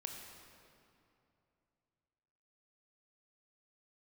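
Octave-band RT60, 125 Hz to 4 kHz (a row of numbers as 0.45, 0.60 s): 3.4, 3.0, 2.8, 2.7, 2.2, 1.8 s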